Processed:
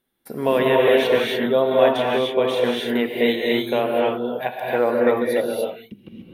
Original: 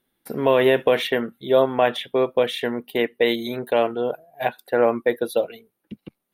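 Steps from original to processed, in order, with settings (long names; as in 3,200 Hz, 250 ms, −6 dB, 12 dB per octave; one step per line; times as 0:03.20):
reverb whose tail is shaped and stops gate 320 ms rising, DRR −2.5 dB
level −2.5 dB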